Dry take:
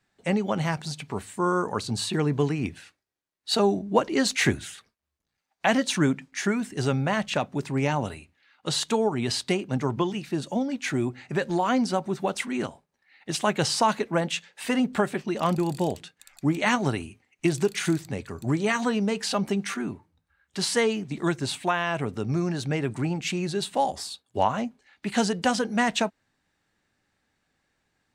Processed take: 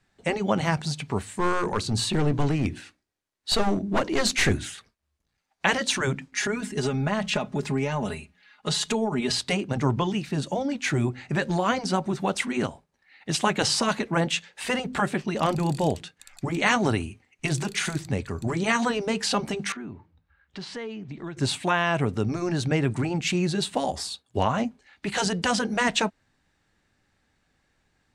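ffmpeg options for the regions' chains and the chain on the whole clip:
ffmpeg -i in.wav -filter_complex "[0:a]asettb=1/sr,asplit=3[link_01][link_02][link_03];[link_01]atrim=end=1.234[link_04];[link_02]atrim=start=1.23:end=4.69,asetpts=PTS-STARTPTS,afade=type=in:duration=0.004:curve=qsin,afade=type=out:start_time=3.456:duration=0.004:curve=qsin,aeval=exprs='clip(val(0),-1,0.0596)':channel_layout=same,bandreject=frequency=60:width_type=h:width=6,bandreject=frequency=120:width_type=h:width=6,bandreject=frequency=180:width_type=h:width=6,bandreject=frequency=240:width_type=h:width=6,bandreject=frequency=300:width_type=h:width=6,bandreject=frequency=360:width_type=h:width=6[link_05];[link_03]atrim=start=4.686[link_06];[link_04][link_05]acrossfade=duration=0.004:curve1=hsin:curve2=qsin[link_07];[link_07][link_06]acrossfade=duration=0.004:curve1=qsin:curve2=hsin,asettb=1/sr,asplit=3[link_08][link_09][link_10];[link_08]atrim=end=6.334[link_11];[link_09]atrim=start=6.33:end=9.39,asetpts=PTS-STARTPTS,afade=type=in:duration=0.004:curve=qsin,afade=type=out:start_time=3.056:duration=0.004:curve=qsin,bandreject=frequency=60:width_type=h:width=6,bandreject=frequency=120:width_type=h:width=6,bandreject=frequency=180:width_type=h:width=6,acompressor=threshold=-26dB:ratio=10:attack=3.2:release=140:knee=1:detection=peak,aecho=1:1:4.8:0.77,atrim=end_sample=134946[link_12];[link_10]atrim=start=9.386[link_13];[link_11][link_12]acrossfade=duration=0.004:curve1=hsin:curve2=qsin[link_14];[link_14][link_13]acrossfade=duration=0.004:curve1=qsin:curve2=hsin,asettb=1/sr,asplit=3[link_15][link_16][link_17];[link_15]atrim=end=19.724[link_18];[link_16]atrim=start=19.72:end=21.37,asetpts=PTS-STARTPTS,afade=type=in:duration=0.004:curve=qsin,afade=type=out:start_time=1.646:duration=0.004:curve=qsin,lowpass=3700,acompressor=threshold=-43dB:ratio=2.5:attack=3.2:release=140:knee=1:detection=peak[link_19];[link_17]atrim=start=21.366[link_20];[link_18][link_19]acrossfade=duration=0.004:curve1=hsin:curve2=qsin[link_21];[link_21][link_20]acrossfade=duration=0.004:curve1=qsin:curve2=hsin,afftfilt=real='re*lt(hypot(re,im),0.501)':imag='im*lt(hypot(re,im),0.501)':win_size=1024:overlap=0.75,lowpass=11000,lowshelf=frequency=90:gain=9,volume=3dB" out.wav

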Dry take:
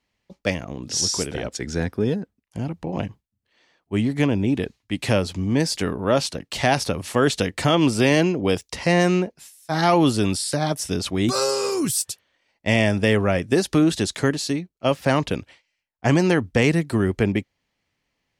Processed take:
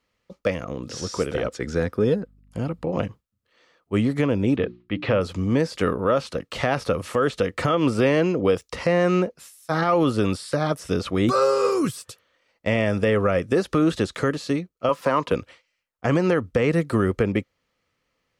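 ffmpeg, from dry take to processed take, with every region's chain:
ffmpeg -i in.wav -filter_complex "[0:a]asettb=1/sr,asplit=3[link_01][link_02][link_03];[link_01]atrim=end=2.094[link_04];[link_02]atrim=start=2.09:end=2.92,asetpts=PTS-STARTPTS,afade=type=in:duration=0.004:curve=qsin,afade=type=out:start_time=0.826:duration=0.004:curve=qsin,bandreject=frequency=6000:width=7,aeval=exprs='val(0)+0.002*(sin(2*PI*50*n/s)+sin(2*PI*2*50*n/s)/2+sin(2*PI*3*50*n/s)/3+sin(2*PI*4*50*n/s)/4+sin(2*PI*5*50*n/s)/5)':channel_layout=same[link_05];[link_03]atrim=start=2.916[link_06];[link_04][link_05]acrossfade=duration=0.004:curve1=hsin:curve2=qsin[link_07];[link_07][link_06]acrossfade=duration=0.004:curve1=qsin:curve2=hsin,asettb=1/sr,asplit=3[link_08][link_09][link_10];[link_08]atrim=end=4.564[link_11];[link_09]atrim=start=4.56:end=5.21,asetpts=PTS-STARTPTS,afade=type=in:duration=0.004:curve=qsin,afade=type=out:start_time=0.646:duration=0.004:curve=qsin,lowpass=frequency=3700:width=0.5412,lowpass=frequency=3700:width=1.3066,bandreject=frequency=60:width_type=h:width=6,bandreject=frequency=120:width_type=h:width=6,bandreject=frequency=180:width_type=h:width=6,bandreject=frequency=240:width_type=h:width=6,bandreject=frequency=300:width_type=h:width=6,bandreject=frequency=360:width_type=h:width=6[link_12];[link_10]atrim=start=5.206[link_13];[link_11][link_12]acrossfade=duration=0.004:curve1=hsin:curve2=qsin[link_14];[link_14][link_13]acrossfade=duration=0.004:curve1=qsin:curve2=hsin,asettb=1/sr,asplit=3[link_15][link_16][link_17];[link_15]atrim=end=14.894[link_18];[link_16]atrim=start=14.89:end=15.32,asetpts=PTS-STARTPTS,afade=type=in:duration=0.004:curve=qsin,afade=type=out:start_time=0.426:duration=0.004:curve=qsin,highpass=180,equalizer=frequency=1000:width=7.8:gain=13.5[link_19];[link_17]atrim=start=15.316[link_20];[link_18][link_19]acrossfade=duration=0.004:curve1=hsin:curve2=qsin[link_21];[link_21][link_20]acrossfade=duration=0.004:curve1=qsin:curve2=hsin,equalizer=frequency=500:width_type=o:width=0.33:gain=9,equalizer=frequency=800:width_type=o:width=0.33:gain=-3,equalizer=frequency=1250:width_type=o:width=0.33:gain=10,acrossover=split=3100[link_22][link_23];[link_23]acompressor=threshold=-39dB:ratio=4:attack=1:release=60[link_24];[link_22][link_24]amix=inputs=2:normalize=0,alimiter=limit=-10.5dB:level=0:latency=1:release=177" out.wav

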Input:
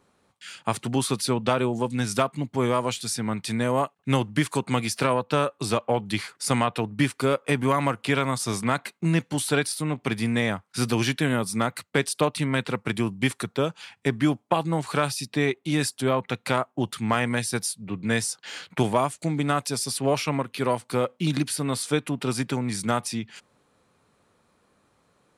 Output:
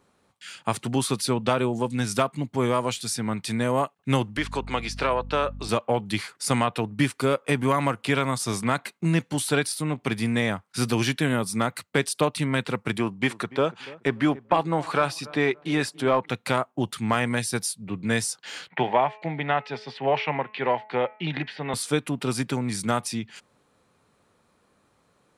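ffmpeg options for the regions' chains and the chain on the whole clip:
ffmpeg -i in.wav -filter_complex "[0:a]asettb=1/sr,asplit=3[link_01][link_02][link_03];[link_01]atrim=end=4.374[link_04];[link_02]atrim=start=4.37:end=5.69,asetpts=PTS-STARTPTS,afade=type=in:duration=0.004:curve=qsin,afade=type=out:start_time=1.316:duration=0.004:curve=qsin,acrossover=split=330 5800:gain=0.224 1 0.141[link_05][link_06][link_07];[link_05][link_06][link_07]amix=inputs=3:normalize=0,aeval=exprs='val(0)+0.0158*(sin(2*PI*50*n/s)+sin(2*PI*2*50*n/s)/2+sin(2*PI*3*50*n/s)/3+sin(2*PI*4*50*n/s)/4+sin(2*PI*5*50*n/s)/5)':channel_layout=same[link_08];[link_03]atrim=start=5.686[link_09];[link_04][link_08]acrossfade=duration=0.004:curve1=hsin:curve2=qsin[link_10];[link_10][link_09]acrossfade=duration=0.004:curve1=qsin:curve2=hsin,asettb=1/sr,asplit=3[link_11][link_12][link_13];[link_11]atrim=end=12.984[link_14];[link_12]atrim=start=12.98:end=16.29,asetpts=PTS-STARTPTS,afade=type=in:duration=0.004:curve=qsin,afade=type=out:start_time=3.306:duration=0.004:curve=qsin,asplit=2[link_15][link_16];[link_16]highpass=frequency=720:poles=1,volume=12dB,asoftclip=type=tanh:threshold=-6.5dB[link_17];[link_15][link_17]amix=inputs=2:normalize=0,lowpass=frequency=1500:poles=1,volume=-6dB,asplit=2[link_18][link_19];[link_19]adelay=288,lowpass=frequency=1200:poles=1,volume=-19dB,asplit=2[link_20][link_21];[link_21]adelay=288,lowpass=frequency=1200:poles=1,volume=0.3,asplit=2[link_22][link_23];[link_23]adelay=288,lowpass=frequency=1200:poles=1,volume=0.3[link_24];[link_18][link_20][link_22][link_24]amix=inputs=4:normalize=0,atrim=end_sample=145971[link_25];[link_13]atrim=start=16.286[link_26];[link_14][link_25]acrossfade=duration=0.004:curve1=hsin:curve2=qsin[link_27];[link_27][link_26]acrossfade=duration=0.004:curve1=qsin:curve2=hsin,asettb=1/sr,asplit=3[link_28][link_29][link_30];[link_28]atrim=end=18.684[link_31];[link_29]atrim=start=18.68:end=21.74,asetpts=PTS-STARTPTS,afade=type=in:duration=0.004:curve=qsin,afade=type=out:start_time=3.056:duration=0.004:curve=qsin,highpass=frequency=150:width=0.5412,highpass=frequency=150:width=1.3066,equalizer=frequency=200:width_type=q:width=4:gain=-9,equalizer=frequency=290:width_type=q:width=4:gain=-8,equalizer=frequency=820:width_type=q:width=4:gain=9,equalizer=frequency=1200:width_type=q:width=4:gain=-6,equalizer=frequency=1900:width_type=q:width=4:gain=9,equalizer=frequency=3000:width_type=q:width=4:gain=3,lowpass=frequency=3300:width=0.5412,lowpass=frequency=3300:width=1.3066,bandreject=frequency=214:width_type=h:width=4,bandreject=frequency=428:width_type=h:width=4,bandreject=frequency=642:width_type=h:width=4,bandreject=frequency=856:width_type=h:width=4,bandreject=frequency=1070:width_type=h:width=4,bandreject=frequency=1284:width_type=h:width=4,bandreject=frequency=1498:width_type=h:width=4,bandreject=frequency=1712:width_type=h:width=4,bandreject=frequency=1926:width_type=h:width=4,bandreject=frequency=2140:width_type=h:width=4,bandreject=frequency=2354:width_type=h:width=4,bandreject=frequency=2568:width_type=h:width=4,bandreject=frequency=2782:width_type=h:width=4[link_32];[link_30]atrim=start=21.736[link_33];[link_31][link_32]acrossfade=duration=0.004:curve1=hsin:curve2=qsin[link_34];[link_34][link_33]acrossfade=duration=0.004:curve1=qsin:curve2=hsin" out.wav

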